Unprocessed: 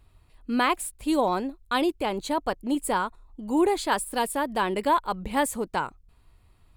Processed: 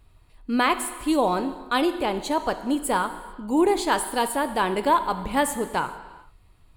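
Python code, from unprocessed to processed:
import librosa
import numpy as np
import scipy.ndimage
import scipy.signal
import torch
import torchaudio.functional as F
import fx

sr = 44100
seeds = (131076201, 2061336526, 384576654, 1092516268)

y = fx.rev_gated(x, sr, seeds[0], gate_ms=470, shape='falling', drr_db=9.5)
y = y * 10.0 ** (2.0 / 20.0)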